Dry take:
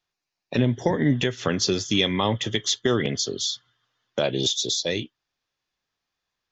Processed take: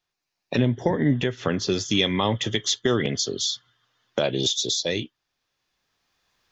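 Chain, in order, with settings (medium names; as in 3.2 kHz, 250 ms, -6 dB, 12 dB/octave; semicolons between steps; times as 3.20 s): recorder AGC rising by 8.5 dB/s; 0.68–1.70 s: treble shelf 4.2 kHz -11.5 dB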